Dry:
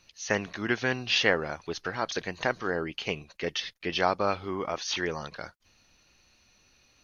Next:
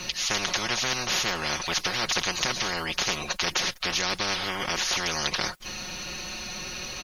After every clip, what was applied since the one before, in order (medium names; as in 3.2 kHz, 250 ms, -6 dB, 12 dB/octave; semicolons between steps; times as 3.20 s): comb 5.5 ms, depth 84%; spectrum-flattening compressor 10:1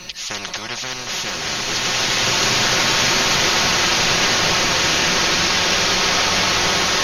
swelling reverb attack 2210 ms, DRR -11 dB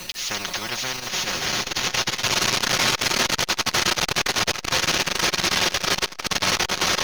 one-sided wavefolder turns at -13 dBFS; bit crusher 6-bit; transformer saturation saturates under 960 Hz